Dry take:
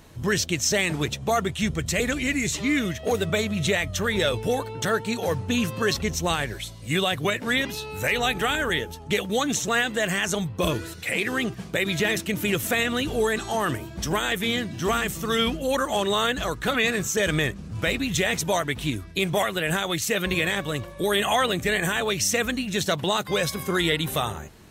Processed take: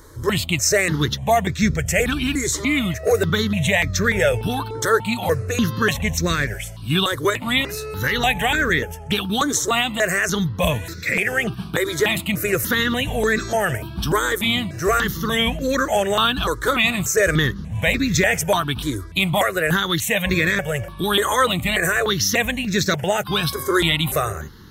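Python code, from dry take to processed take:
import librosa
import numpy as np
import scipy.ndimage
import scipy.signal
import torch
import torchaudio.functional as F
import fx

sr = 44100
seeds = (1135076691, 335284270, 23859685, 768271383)

y = fx.phaser_held(x, sr, hz=3.4, low_hz=720.0, high_hz=3000.0)
y = y * 10.0 ** (8.0 / 20.0)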